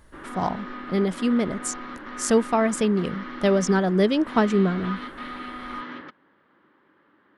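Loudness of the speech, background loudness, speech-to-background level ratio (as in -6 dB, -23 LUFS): -23.5 LUFS, -36.5 LUFS, 13.0 dB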